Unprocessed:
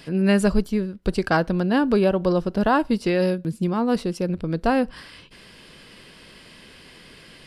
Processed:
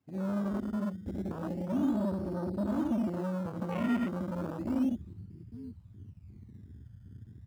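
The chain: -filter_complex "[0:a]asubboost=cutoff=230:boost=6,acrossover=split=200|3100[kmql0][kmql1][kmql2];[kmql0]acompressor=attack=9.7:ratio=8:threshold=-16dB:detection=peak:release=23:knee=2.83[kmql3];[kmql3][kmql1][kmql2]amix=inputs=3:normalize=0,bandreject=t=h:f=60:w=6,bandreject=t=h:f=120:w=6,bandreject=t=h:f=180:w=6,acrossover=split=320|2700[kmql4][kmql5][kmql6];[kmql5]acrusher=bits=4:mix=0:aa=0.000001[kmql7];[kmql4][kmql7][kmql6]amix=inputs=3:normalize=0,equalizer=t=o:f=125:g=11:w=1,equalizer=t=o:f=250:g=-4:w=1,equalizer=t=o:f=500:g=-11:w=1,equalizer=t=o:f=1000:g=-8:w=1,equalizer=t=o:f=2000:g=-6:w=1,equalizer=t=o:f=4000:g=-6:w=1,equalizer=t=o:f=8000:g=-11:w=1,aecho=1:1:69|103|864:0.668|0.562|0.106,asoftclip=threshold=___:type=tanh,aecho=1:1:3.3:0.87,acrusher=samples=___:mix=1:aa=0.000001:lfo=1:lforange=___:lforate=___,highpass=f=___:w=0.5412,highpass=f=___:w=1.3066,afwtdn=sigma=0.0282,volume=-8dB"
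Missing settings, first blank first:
-20.5dB, 18, 18, 0.32, 75, 75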